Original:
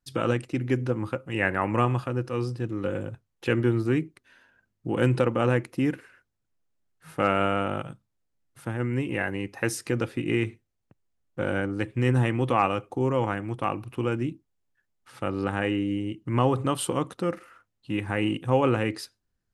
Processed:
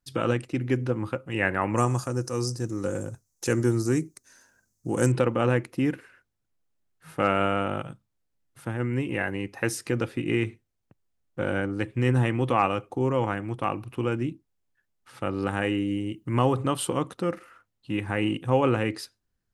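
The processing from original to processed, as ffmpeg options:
-filter_complex "[0:a]asettb=1/sr,asplit=3[a][b][c];[a]atrim=end=1.764[d];[b]atrim=start=1.76:end=5.12,asetpts=PTS-STARTPTS,afade=t=in:d=0.004:c=qsin,afade=t=out:st=3.356:d=0.004:c=qsin,highshelf=f=4.4k:t=q:w=3:g=13[e];[c]atrim=start=5.116[f];[d][e]acrossfade=d=0.004:c1=hsin:c2=qsin[g];[g][f]acrossfade=d=0.004:c1=qsin:c2=hsin,asettb=1/sr,asplit=3[h][i][j];[h]atrim=end=15.424[k];[i]atrim=start=15.42:end=16.53,asetpts=PTS-STARTPTS,afade=t=in:d=0.004:c=qsin,afade=t=out:st=1.106:d=0.004:c=qsin,highshelf=f=9k:g=11.5[l];[j]atrim=start=16.526[m];[k][l]acrossfade=d=0.004:c1=hsin:c2=qsin[n];[n][m]acrossfade=d=0.004:c1=qsin:c2=hsin"

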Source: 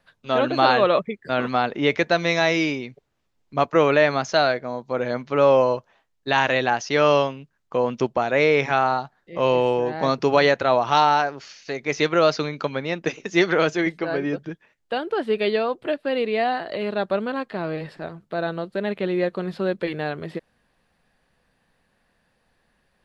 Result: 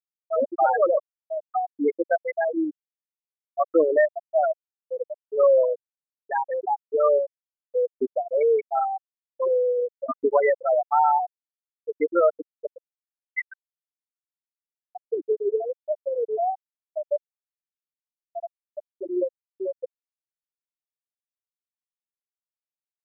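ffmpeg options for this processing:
-filter_complex "[0:a]asettb=1/sr,asplit=3[a][b][c];[a]atrim=end=12.944[d];[b]atrim=start=12.94:end=14.95,asetpts=PTS-STARTPTS,afade=t=in:d=0.004:c=qsin,afade=t=out:st=2.006:d=0.004:c=qsin,highpass=1.1k[e];[c]atrim=start=14.946[f];[d][e]acrossfade=d=0.004:c1=hsin:c2=qsin[g];[g][f]acrossfade=d=0.004:c1=qsin:c2=hsin,afftfilt=real='re*gte(hypot(re,im),0.631)':imag='im*gte(hypot(re,im),0.631)':win_size=1024:overlap=0.75"

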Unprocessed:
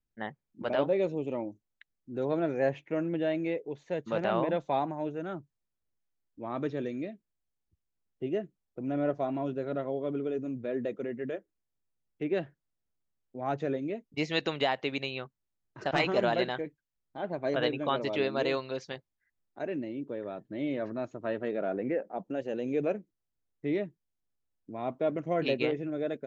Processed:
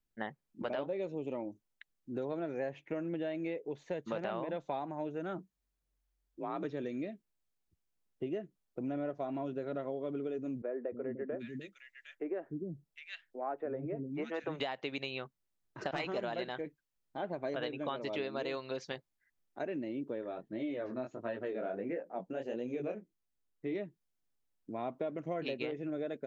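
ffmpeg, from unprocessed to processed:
-filter_complex "[0:a]asplit=3[a][b][c];[a]afade=t=out:st=5.37:d=0.02[d];[b]afreqshift=46,afade=t=in:st=5.37:d=0.02,afade=t=out:st=6.63:d=0.02[e];[c]afade=t=in:st=6.63:d=0.02[f];[d][e][f]amix=inputs=3:normalize=0,asettb=1/sr,asplit=3[g][h][i];[g]atrim=end=10.624[j];[h]atrim=start=10.62:end=14.6,asetpts=PTS-STARTPTS,afade=t=in:d=0.004:c=qsin,afade=t=out:st=3.976:d=0.004:c=qsin,acrossover=split=290|1800[k][l][m];[k]adelay=300[n];[m]adelay=760[o];[n][l][o]amix=inputs=3:normalize=0,atrim=end_sample=175518[p];[i]atrim=start=14.596[q];[j][p]acrossfade=d=0.004:c1=hsin:c2=qsin[r];[r][q]acrossfade=d=0.004:c1=qsin:c2=hsin,asplit=3[s][t][u];[s]afade=t=out:st=20.21:d=0.02[v];[t]flanger=delay=16.5:depth=6.9:speed=1.5,afade=t=in:st=20.21:d=0.02,afade=t=out:st=23.74:d=0.02[w];[u]afade=t=in:st=23.74:d=0.02[x];[v][w][x]amix=inputs=3:normalize=0,equalizer=f=81:t=o:w=1.3:g=-5.5,acompressor=threshold=-35dB:ratio=6,volume=1dB"

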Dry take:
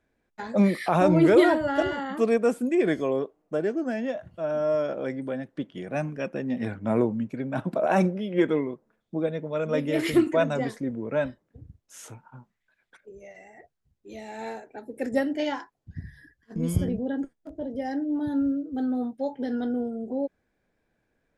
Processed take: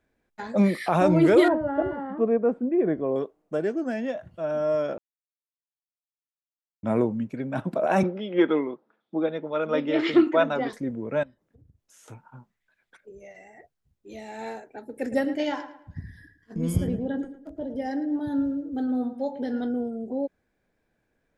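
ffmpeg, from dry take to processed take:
-filter_complex "[0:a]asettb=1/sr,asplit=3[a][b][c];[a]atrim=end=1.484[d];[b]atrim=start=1.48:end=3.16,asetpts=PTS-STARTPTS,afade=t=in:d=0.004:c=qsin,afade=t=out:st=1.676:d=0.004:c=qsin,lowpass=1k[e];[c]atrim=start=3.156[f];[d][e]acrossfade=d=0.004:c1=hsin:c2=qsin[g];[g][f]acrossfade=d=0.004:c1=qsin:c2=hsin,asettb=1/sr,asplit=3[h][i][j];[h]atrim=end=8.034[k];[i]atrim=start=8.03:end=10.73,asetpts=PTS-STARTPTS,afade=t=in:d=0.004:c=qsin,afade=t=out:st=2.696:d=0.004:c=qsin,highpass=230,equalizer=f=320:t=q:w=4:g=4,equalizer=f=840:t=q:w=4:g=6,equalizer=f=1.3k:t=q:w=4:g=7,equalizer=f=3.4k:t=q:w=4:g=4,lowpass=f=4.9k:w=0.5412,lowpass=f=4.9k:w=1.3066[l];[j]atrim=start=10.726[m];[k][l]acrossfade=d=0.004:c1=hsin:c2=qsin[n];[n][m]acrossfade=d=0.004:c1=qsin:c2=hsin,asettb=1/sr,asplit=3[o][p][q];[o]atrim=end=11.234[r];[p]atrim=start=11.23:end=12.08,asetpts=PTS-STARTPTS,afade=t=in:d=0.004:c=qsin,afade=t=out:st=0.846:d=0.004:c=qsin,acompressor=threshold=-57dB:ratio=2.5:attack=3.2:release=140:knee=1:detection=peak[s];[q]atrim=start=12.076[t];[r][s]acrossfade=d=0.004:c1=hsin:c2=qsin[u];[u][t]acrossfade=d=0.004:c1=qsin:c2=hsin,asettb=1/sr,asplit=3[v][w][x];[v]atrim=end=14.784[y];[w]atrim=start=14.78:end=19.61,asetpts=PTS-STARTPTS,afade=t=in:d=0.004:c=qsin,afade=t=out:st=4.826:d=0.004:c=qsin,asplit=2[z][aa];[aa]adelay=110,lowpass=f=3.1k:p=1,volume=-11.5dB,asplit=2[ab][ac];[ac]adelay=110,lowpass=f=3.1k:p=1,volume=0.36,asplit=2[ad][ae];[ae]adelay=110,lowpass=f=3.1k:p=1,volume=0.36,asplit=2[af][ag];[ag]adelay=110,lowpass=f=3.1k:p=1,volume=0.36[ah];[z][ab][ad][af][ah]amix=inputs=5:normalize=0,atrim=end_sample=213003[ai];[x]atrim=start=19.606[aj];[y][ai]acrossfade=d=0.004:c1=hsin:c2=qsin[ak];[ak][aj]acrossfade=d=0.004:c1=qsin:c2=hsin,asplit=3[al][am][an];[al]atrim=end=4.98,asetpts=PTS-STARTPTS,afade=t=out:st=4.976:d=0.004:c=hsin[ao];[am]atrim=start=4.98:end=6.83,asetpts=PTS-STARTPTS,volume=0[ap];[an]atrim=start=6.83,asetpts=PTS-STARTPTS,afade=t=in:d=0.004:c=hsin[aq];[ao][ap][aq]concat=n=3:v=0:a=1"

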